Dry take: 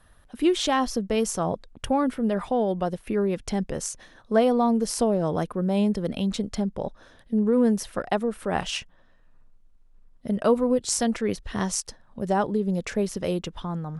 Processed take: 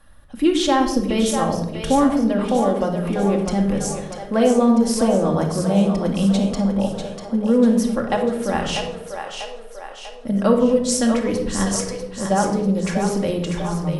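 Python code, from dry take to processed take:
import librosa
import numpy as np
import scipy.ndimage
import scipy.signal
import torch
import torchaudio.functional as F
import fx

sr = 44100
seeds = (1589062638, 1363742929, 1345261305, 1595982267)

y = fx.echo_split(x, sr, split_hz=430.0, low_ms=126, high_ms=644, feedback_pct=52, wet_db=-6.5)
y = fx.room_shoebox(y, sr, seeds[0], volume_m3=2000.0, walls='furnished', distance_m=2.3)
y = y * librosa.db_to_amplitude(2.0)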